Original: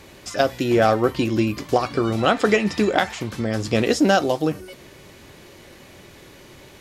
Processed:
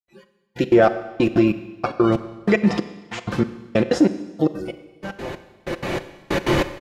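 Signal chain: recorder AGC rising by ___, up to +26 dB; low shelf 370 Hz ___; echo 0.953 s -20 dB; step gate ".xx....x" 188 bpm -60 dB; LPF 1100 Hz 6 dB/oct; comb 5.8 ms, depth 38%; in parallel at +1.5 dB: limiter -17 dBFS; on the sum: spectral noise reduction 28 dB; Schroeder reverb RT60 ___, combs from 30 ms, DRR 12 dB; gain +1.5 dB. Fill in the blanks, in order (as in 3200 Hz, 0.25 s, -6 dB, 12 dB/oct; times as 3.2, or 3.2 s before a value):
12 dB/s, -6 dB, 1.2 s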